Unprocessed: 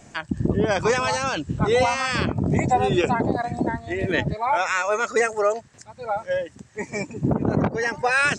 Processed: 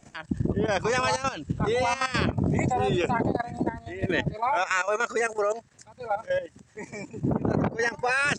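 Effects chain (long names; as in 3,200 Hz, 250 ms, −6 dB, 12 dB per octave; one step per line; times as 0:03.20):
output level in coarse steps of 12 dB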